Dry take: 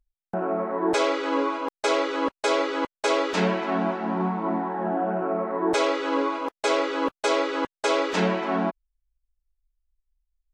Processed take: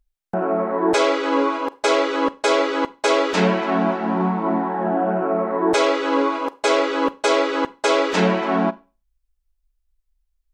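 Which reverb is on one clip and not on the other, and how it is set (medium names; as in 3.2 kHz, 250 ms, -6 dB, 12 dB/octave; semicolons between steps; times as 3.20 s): Schroeder reverb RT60 0.32 s, combs from 32 ms, DRR 18.5 dB; trim +5 dB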